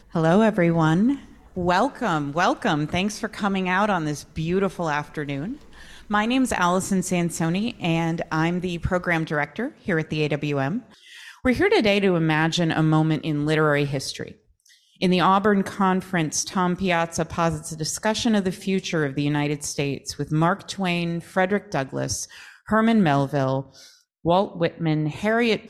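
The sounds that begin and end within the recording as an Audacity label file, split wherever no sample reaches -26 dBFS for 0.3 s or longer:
1.570000	5.530000	sound
6.110000	10.780000	sound
11.450000	14.280000	sound
15.020000	22.240000	sound
22.690000	23.610000	sound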